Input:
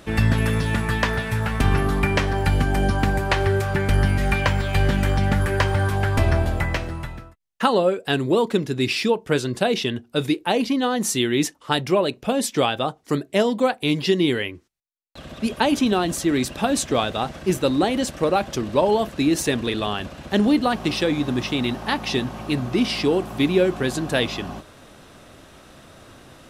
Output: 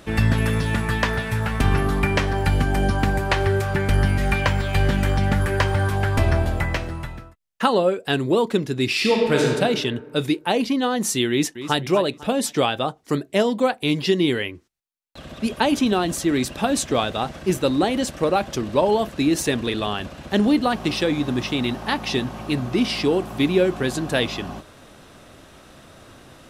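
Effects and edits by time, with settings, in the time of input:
0:08.90–0:09.46: thrown reverb, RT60 1.6 s, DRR −1.5 dB
0:11.30–0:11.77: delay throw 250 ms, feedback 40%, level −12 dB

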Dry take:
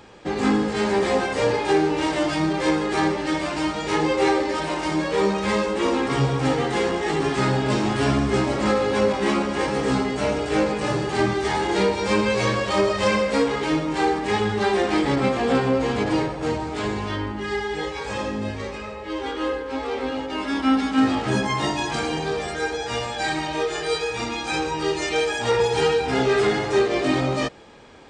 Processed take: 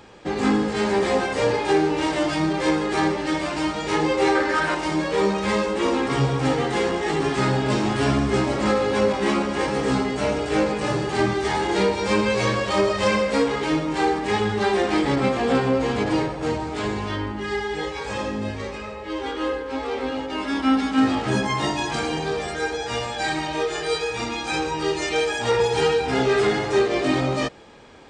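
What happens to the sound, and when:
0:04.35–0:04.75: parametric band 1,500 Hz +13 dB 0.62 octaves

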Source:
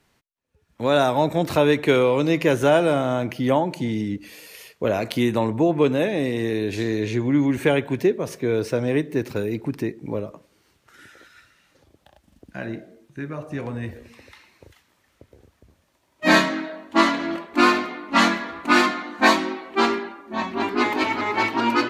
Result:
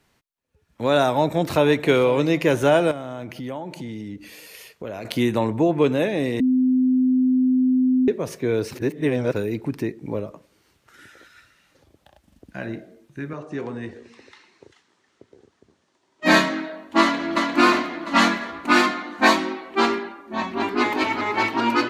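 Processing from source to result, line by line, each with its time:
0:01.17–0:01.81: delay throw 490 ms, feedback 45%, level −16.5 dB
0:02.91–0:05.05: downward compressor 2.5 to 1, threshold −33 dBFS
0:06.40–0:08.08: beep over 256 Hz −15 dBFS
0:08.71–0:09.33: reverse
0:13.33–0:16.26: loudspeaker in its box 170–7,900 Hz, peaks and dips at 390 Hz +6 dB, 580 Hz −5 dB, 2,400 Hz −4 dB
0:17.01–0:17.41: delay throw 350 ms, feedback 50%, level −2 dB

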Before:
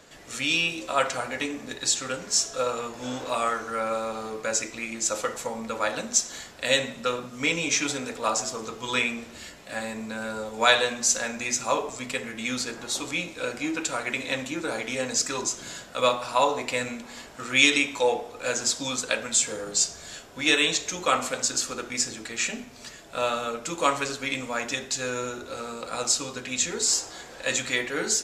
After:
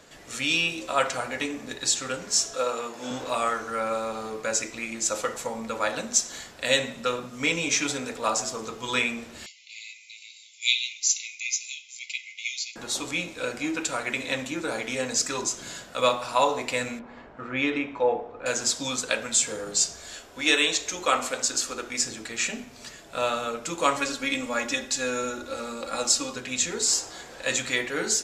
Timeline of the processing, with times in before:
0:02.54–0:03.11: high-pass filter 210 Hz
0:09.46–0:12.76: linear-phase brick-wall band-pass 2,000–7,400 Hz
0:16.99–0:18.46: low-pass filter 1,500 Hz
0:19.96–0:22.03: parametric band 150 Hz −9.5 dB
0:23.96–0:26.36: comb filter 3.6 ms, depth 58%

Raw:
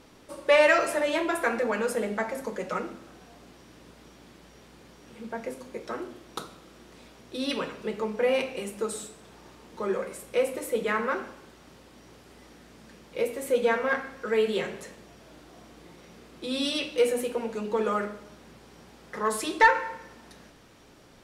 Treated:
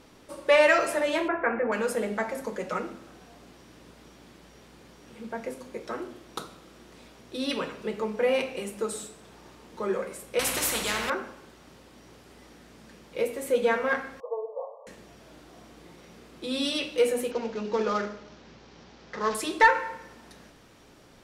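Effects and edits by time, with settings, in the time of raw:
0:01.28–0:01.72: Butterworth low-pass 2,300 Hz
0:10.39–0:11.10: every bin compressed towards the loudest bin 4 to 1
0:14.20–0:14.87: linear-phase brick-wall band-pass 450–1,200 Hz
0:17.31–0:19.35: variable-slope delta modulation 32 kbit/s

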